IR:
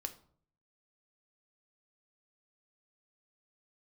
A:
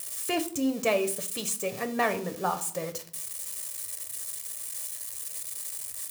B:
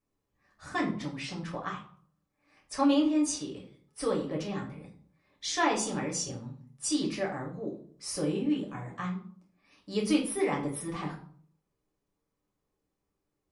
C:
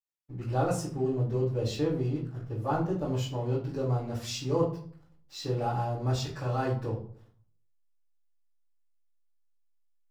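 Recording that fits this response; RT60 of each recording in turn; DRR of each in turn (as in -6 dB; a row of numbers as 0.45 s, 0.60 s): A; 0.55 s, 0.55 s, 0.55 s; 7.0 dB, -2.5 dB, -11.5 dB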